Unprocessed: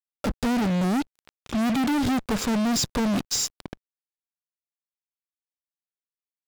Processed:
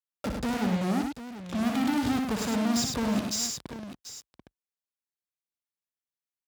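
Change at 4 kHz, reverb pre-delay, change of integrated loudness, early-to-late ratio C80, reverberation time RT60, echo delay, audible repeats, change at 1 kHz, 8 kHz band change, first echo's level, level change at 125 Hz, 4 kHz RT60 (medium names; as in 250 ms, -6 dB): -3.5 dB, no reverb, -3.5 dB, no reverb, no reverb, 60 ms, 3, -3.5 dB, -3.5 dB, -6.0 dB, -4.0 dB, no reverb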